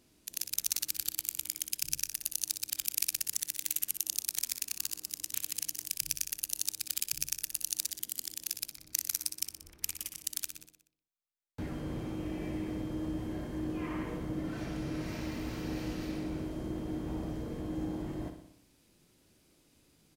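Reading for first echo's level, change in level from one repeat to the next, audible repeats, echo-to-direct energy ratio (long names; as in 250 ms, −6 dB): −9.0 dB, −5.0 dB, 6, −7.5 dB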